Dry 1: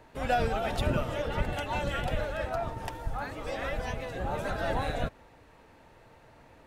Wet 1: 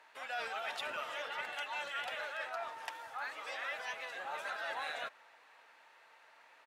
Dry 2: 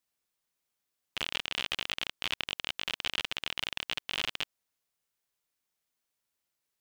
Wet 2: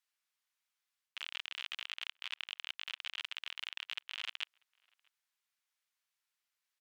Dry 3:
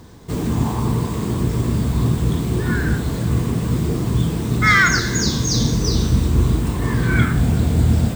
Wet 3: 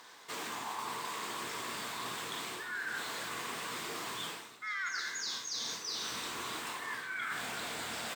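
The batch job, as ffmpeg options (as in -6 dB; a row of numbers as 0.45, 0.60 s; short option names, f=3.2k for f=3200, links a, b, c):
-filter_complex "[0:a]highpass=1.3k,aemphasis=mode=reproduction:type=cd,areverse,acompressor=threshold=-38dB:ratio=12,areverse,asplit=2[a][b];[b]adelay=641.4,volume=-29dB,highshelf=f=4k:g=-14.4[c];[a][c]amix=inputs=2:normalize=0,volume=2.5dB"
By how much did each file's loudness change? -8.0, -8.0, -19.0 LU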